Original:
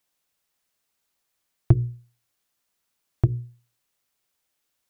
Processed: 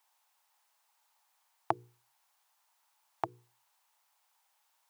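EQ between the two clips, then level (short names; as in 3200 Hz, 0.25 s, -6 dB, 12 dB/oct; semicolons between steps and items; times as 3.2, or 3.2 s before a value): resonant high-pass 870 Hz, resonance Q 4.9; +1.5 dB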